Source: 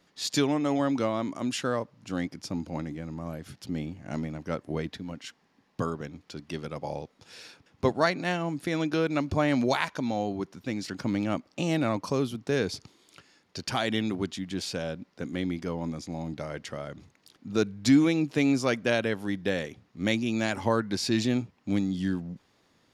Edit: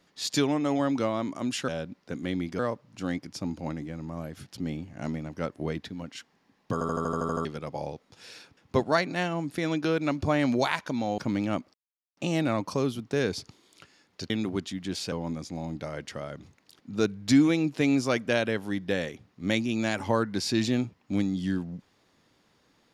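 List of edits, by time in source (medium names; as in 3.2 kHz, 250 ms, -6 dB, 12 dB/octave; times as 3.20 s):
5.82 s: stutter in place 0.08 s, 9 plays
10.27–10.97 s: delete
11.53 s: insert silence 0.43 s
13.66–13.96 s: delete
14.78–15.69 s: move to 1.68 s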